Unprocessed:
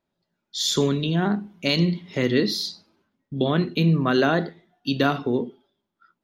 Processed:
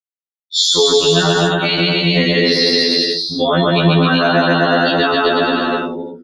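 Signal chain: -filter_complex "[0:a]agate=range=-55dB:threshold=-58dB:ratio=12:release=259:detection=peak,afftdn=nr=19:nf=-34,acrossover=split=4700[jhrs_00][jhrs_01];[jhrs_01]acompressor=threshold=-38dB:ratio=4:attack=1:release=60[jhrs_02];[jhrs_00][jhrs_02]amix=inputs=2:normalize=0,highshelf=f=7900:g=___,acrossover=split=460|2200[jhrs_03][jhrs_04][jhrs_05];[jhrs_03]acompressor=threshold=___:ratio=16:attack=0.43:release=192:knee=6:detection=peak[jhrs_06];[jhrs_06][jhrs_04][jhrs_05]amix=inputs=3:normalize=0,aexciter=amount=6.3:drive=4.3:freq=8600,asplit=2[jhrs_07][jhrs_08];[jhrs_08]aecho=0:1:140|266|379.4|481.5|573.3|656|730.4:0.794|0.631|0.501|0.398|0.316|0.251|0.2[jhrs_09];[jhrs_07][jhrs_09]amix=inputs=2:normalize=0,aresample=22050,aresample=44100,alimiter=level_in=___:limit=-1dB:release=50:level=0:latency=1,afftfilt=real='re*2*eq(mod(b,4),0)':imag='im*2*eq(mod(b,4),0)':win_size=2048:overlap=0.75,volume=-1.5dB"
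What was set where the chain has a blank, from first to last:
6.5, -30dB, 18.5dB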